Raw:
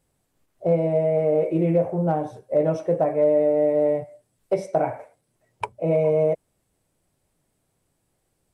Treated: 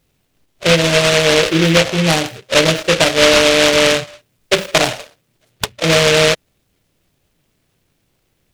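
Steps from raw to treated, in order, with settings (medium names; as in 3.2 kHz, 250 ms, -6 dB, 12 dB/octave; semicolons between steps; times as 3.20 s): delay time shaken by noise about 2.4 kHz, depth 0.23 ms; trim +8 dB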